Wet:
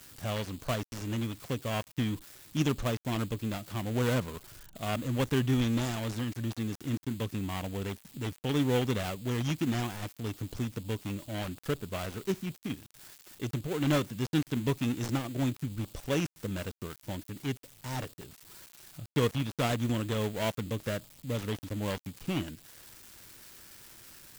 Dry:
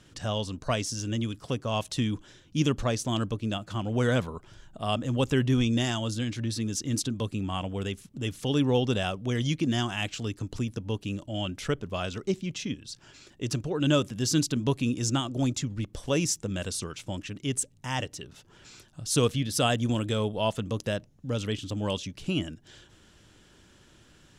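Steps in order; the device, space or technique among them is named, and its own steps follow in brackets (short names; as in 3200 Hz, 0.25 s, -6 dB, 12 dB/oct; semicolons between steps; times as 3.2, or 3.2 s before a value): budget class-D amplifier (switching dead time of 0.26 ms; switching spikes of -30 dBFS); gain -3 dB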